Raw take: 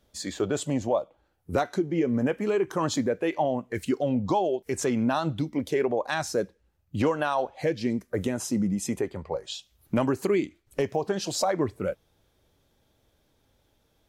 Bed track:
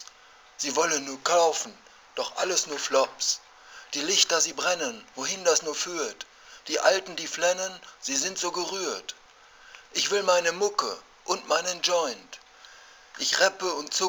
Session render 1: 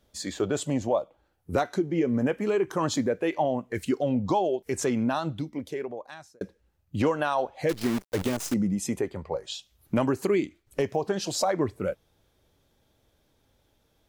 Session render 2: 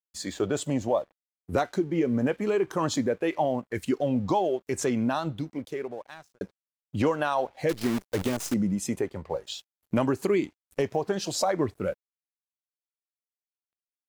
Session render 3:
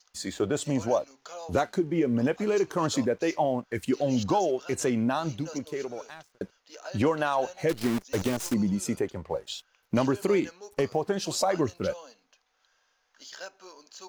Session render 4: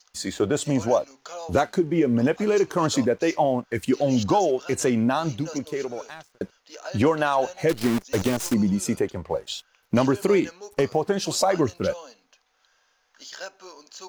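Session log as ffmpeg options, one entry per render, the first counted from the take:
ffmpeg -i in.wav -filter_complex "[0:a]asettb=1/sr,asplit=3[link_01][link_02][link_03];[link_01]atrim=end=7.694[link_04];[link_02]atrim=start=7.69:end=8.54,asetpts=PTS-STARTPTS,afade=type=in:duration=0.004:curve=qsin,afade=type=out:start_time=0.846:duration=0.004:curve=qsin,acrusher=bits=6:dc=4:mix=0:aa=0.000001[link_05];[link_03]atrim=start=8.536[link_06];[link_04][link_05]acrossfade=duration=0.004:curve1=hsin:curve2=qsin[link_07];[link_07][link_06]acrossfade=duration=0.004:curve1=qsin:curve2=hsin,asplit=2[link_08][link_09];[link_08]atrim=end=6.41,asetpts=PTS-STARTPTS,afade=type=out:start_time=4.86:duration=1.55[link_10];[link_09]atrim=start=6.41,asetpts=PTS-STARTPTS,afade=type=in:duration=0.004:curve=hsin[link_11];[link_10][link_11]concat=n=2:v=0:a=1" out.wav
ffmpeg -i in.wav -af "aeval=exprs='sgn(val(0))*max(abs(val(0))-0.00168,0)':channel_layout=same" out.wav
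ffmpeg -i in.wav -i bed.wav -filter_complex "[1:a]volume=-20dB[link_01];[0:a][link_01]amix=inputs=2:normalize=0" out.wav
ffmpeg -i in.wav -af "volume=4.5dB" out.wav

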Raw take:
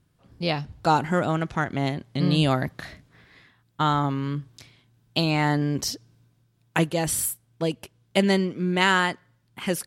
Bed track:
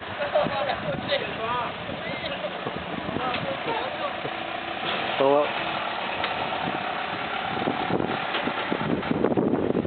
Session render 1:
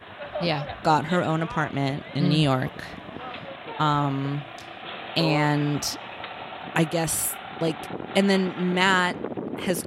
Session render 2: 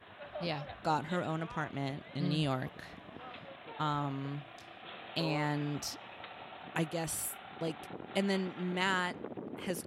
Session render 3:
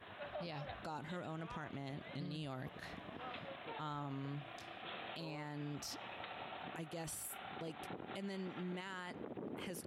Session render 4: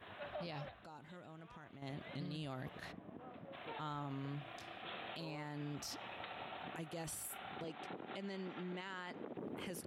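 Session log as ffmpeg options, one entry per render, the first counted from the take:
ffmpeg -i in.wav -i bed.wav -filter_complex "[1:a]volume=-9dB[link_01];[0:a][link_01]amix=inputs=2:normalize=0" out.wav
ffmpeg -i in.wav -af "volume=-11.5dB" out.wav
ffmpeg -i in.wav -af "acompressor=threshold=-39dB:ratio=4,alimiter=level_in=12.5dB:limit=-24dB:level=0:latency=1:release=48,volume=-12.5dB" out.wav
ffmpeg -i in.wav -filter_complex "[0:a]asplit=3[link_01][link_02][link_03];[link_01]afade=type=out:start_time=2.91:duration=0.02[link_04];[link_02]bandpass=frequency=240:width_type=q:width=0.63,afade=type=in:start_time=2.91:duration=0.02,afade=type=out:start_time=3.52:duration=0.02[link_05];[link_03]afade=type=in:start_time=3.52:duration=0.02[link_06];[link_04][link_05][link_06]amix=inputs=3:normalize=0,asettb=1/sr,asplit=3[link_07][link_08][link_09];[link_07]atrim=end=7.644[link_10];[link_08]atrim=start=7.64:end=9.37,asetpts=PTS-STARTPTS,afade=type=in:duration=0.004:curve=qsin,afade=type=out:start_time=1.726:duration=0.004:curve=qsin,acrossover=split=150 7600:gain=0.251 1 0.0708[link_11][link_12][link_13];[link_11][link_12][link_13]amix=inputs=3:normalize=0[link_14];[link_09]atrim=start=9.366[link_15];[link_10][link_14]acrossfade=duration=0.004:curve1=hsin:curve2=qsin[link_16];[link_16][link_15]acrossfade=duration=0.004:curve1=qsin:curve2=hsin,asplit=3[link_17][link_18][link_19];[link_17]atrim=end=0.692[link_20];[link_18]atrim=start=0.688:end=1.822,asetpts=PTS-STARTPTS,volume=-9.5dB[link_21];[link_19]atrim=start=1.818[link_22];[link_20][link_21]acrossfade=duration=0.004:curve1=hsin:curve2=hsin[link_23];[link_23][link_22]acrossfade=duration=0.004:curve1=hsin:curve2=hsin" out.wav

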